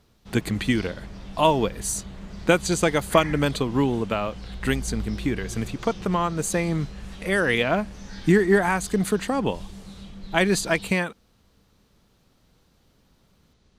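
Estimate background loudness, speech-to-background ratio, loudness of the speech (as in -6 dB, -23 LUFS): -39.5 LUFS, 15.5 dB, -24.0 LUFS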